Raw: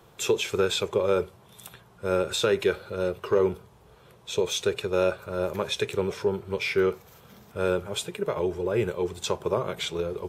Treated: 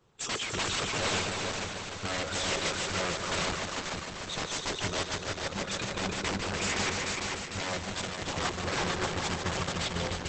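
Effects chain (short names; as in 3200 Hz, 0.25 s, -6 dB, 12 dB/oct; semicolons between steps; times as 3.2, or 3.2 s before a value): 9.07–9.67 median filter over 3 samples; bell 620 Hz -14 dB 0.27 oct; spectral noise reduction 15 dB; in parallel at -2 dB: compressor 16:1, threshold -36 dBFS, peak gain reduction 17.5 dB; on the sum: wrapped overs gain 25 dB; 5.03–5.46 level quantiser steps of 14 dB; multi-head echo 0.149 s, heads all three, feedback 63%, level -7 dB; Opus 12 kbps 48000 Hz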